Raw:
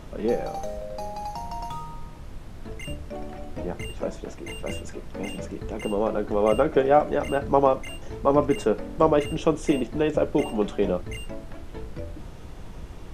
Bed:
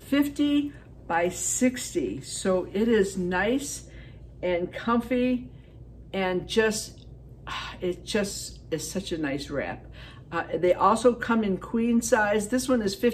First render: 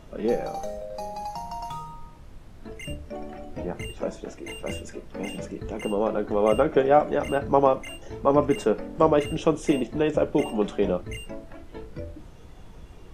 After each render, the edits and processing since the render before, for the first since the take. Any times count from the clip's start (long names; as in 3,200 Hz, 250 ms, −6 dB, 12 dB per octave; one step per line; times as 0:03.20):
noise reduction from a noise print 6 dB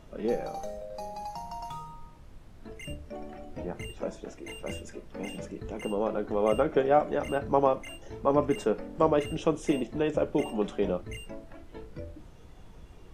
level −4.5 dB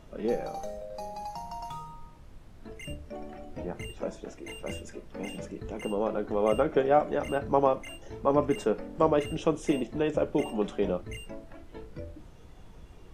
no processing that can be heard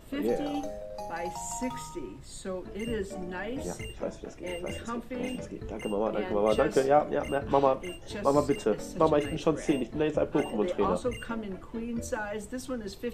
mix in bed −11.5 dB